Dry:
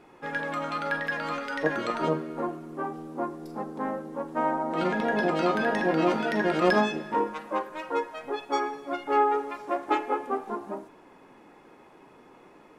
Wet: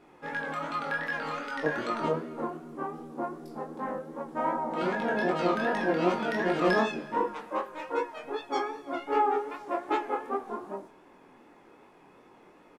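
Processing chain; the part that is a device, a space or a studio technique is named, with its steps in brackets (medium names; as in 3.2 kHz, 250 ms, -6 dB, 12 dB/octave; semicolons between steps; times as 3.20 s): double-tracked vocal (doubling 17 ms -12.5 dB; chorus 2.6 Hz, delay 20 ms, depth 7.2 ms)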